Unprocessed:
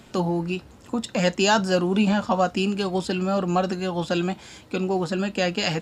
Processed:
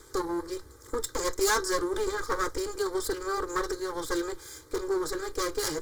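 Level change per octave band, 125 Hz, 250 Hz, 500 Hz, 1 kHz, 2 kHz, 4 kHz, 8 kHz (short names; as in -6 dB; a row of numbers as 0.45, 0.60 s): -20.0, -11.5, -5.0, -6.5, -5.5, -7.5, +2.5 dB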